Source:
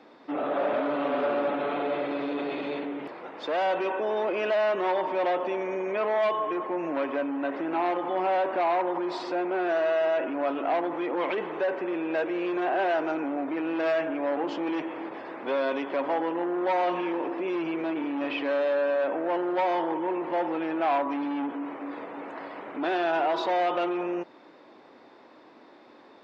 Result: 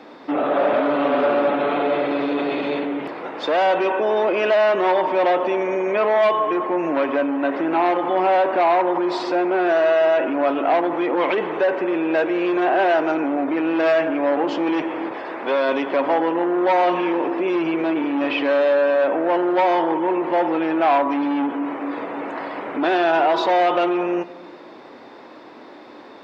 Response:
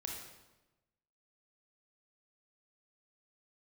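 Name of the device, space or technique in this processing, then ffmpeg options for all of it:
compressed reverb return: -filter_complex "[0:a]asplit=2[a][b];[1:a]atrim=start_sample=2205[c];[b][c]afir=irnorm=-1:irlink=0,acompressor=threshold=-39dB:ratio=6,volume=-3.5dB[d];[a][d]amix=inputs=2:normalize=0,asettb=1/sr,asplit=3[e][f][g];[e]atrim=end=15.124[h];[f]atrim=start=15.12:end=15.69,asetpts=PTS-STARTPTS,afade=t=in:d=0.004:c=qsin,afade=t=out:st=0.566:d=0.004:c=qsin,equalizer=f=130:w=0.57:g=-7[i];[g]atrim=start=15.686[j];[h][i]acrossfade=d=0.004:c1=hsin:c2=qsin[k];[k][j]acrossfade=d=0.004:c1=qsin:c2=hsin,volume=7.5dB"

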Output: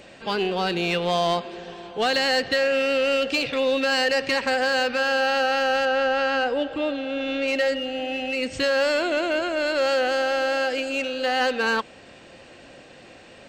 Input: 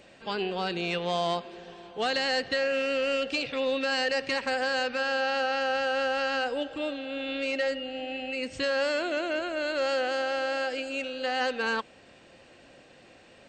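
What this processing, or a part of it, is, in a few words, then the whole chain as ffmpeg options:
parallel distortion: -filter_complex "[0:a]asplit=2[a][b];[b]asoftclip=type=hard:threshold=-33.5dB,volume=-7.5dB[c];[a][c]amix=inputs=2:normalize=0,asettb=1/sr,asplit=3[d][e][f];[d]atrim=end=5.854[g];[e]atrim=start=5.85:end=7.48,asetpts=PTS-STARTPTS,afade=t=in:d=0.004:c=qsin,afade=t=out:st=1.626:d=0.004:c=qsin,aemphasis=mode=reproduction:type=50fm[h];[f]atrim=start=7.476[i];[g][h]acrossfade=d=0.004:c1=hsin:c2=qsin[j];[j][i]acrossfade=d=0.004:c1=qsin:c2=hsin,volume=4.5dB"

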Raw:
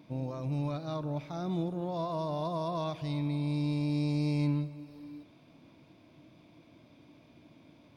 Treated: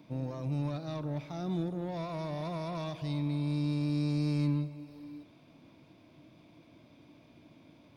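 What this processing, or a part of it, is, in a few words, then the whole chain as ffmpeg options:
one-band saturation: -filter_complex "[0:a]acrossover=split=360|3200[a][b][c];[b]asoftclip=type=tanh:threshold=-38dB[d];[a][d][c]amix=inputs=3:normalize=0"

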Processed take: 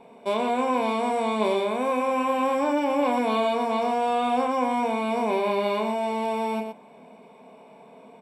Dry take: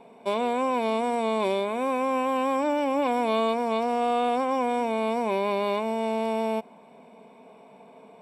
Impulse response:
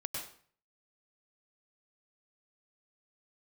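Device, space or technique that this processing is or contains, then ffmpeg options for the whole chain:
slapback doubling: -filter_complex "[0:a]asplit=3[a][b][c];[b]adelay=28,volume=-5.5dB[d];[c]adelay=119,volume=-7dB[e];[a][d][e]amix=inputs=3:normalize=0"

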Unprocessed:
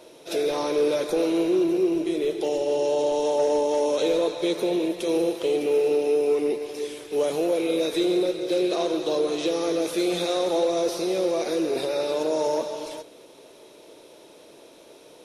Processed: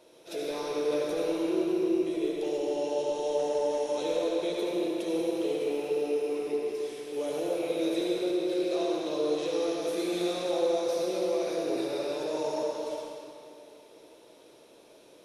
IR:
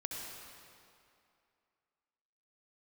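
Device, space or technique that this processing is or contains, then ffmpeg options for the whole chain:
stairwell: -filter_complex "[1:a]atrim=start_sample=2205[a];[0:a][a]afir=irnorm=-1:irlink=0,volume=-6.5dB"

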